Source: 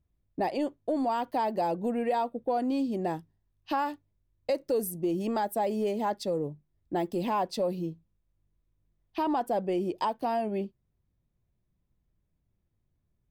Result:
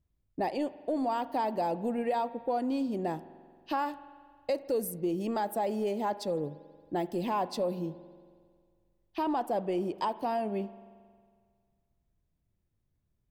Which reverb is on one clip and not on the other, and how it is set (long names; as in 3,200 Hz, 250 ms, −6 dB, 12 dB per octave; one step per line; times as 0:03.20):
spring reverb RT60 1.9 s, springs 45 ms, chirp 40 ms, DRR 15.5 dB
level −2 dB